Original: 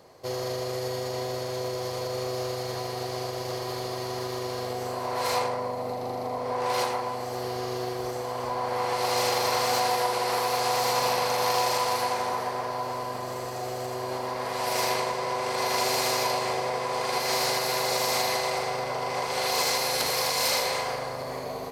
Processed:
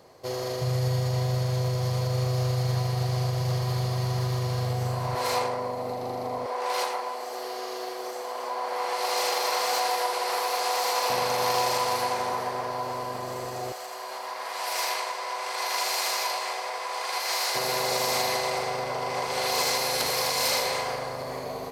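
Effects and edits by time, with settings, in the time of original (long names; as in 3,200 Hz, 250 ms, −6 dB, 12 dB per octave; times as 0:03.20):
0:00.61–0:05.15: low shelf with overshoot 210 Hz +10 dB, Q 3
0:06.46–0:11.10: Bessel high-pass filter 480 Hz, order 4
0:13.72–0:17.55: high-pass filter 810 Hz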